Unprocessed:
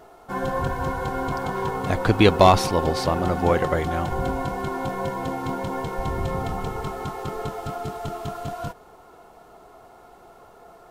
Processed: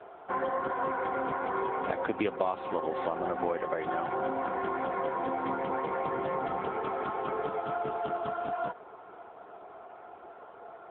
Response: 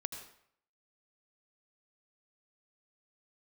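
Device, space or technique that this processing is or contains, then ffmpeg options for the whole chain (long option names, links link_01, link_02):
voicemail: -af "highpass=310,lowpass=2800,acompressor=threshold=-29dB:ratio=6,volume=2dB" -ar 8000 -c:a libopencore_amrnb -b:a 7950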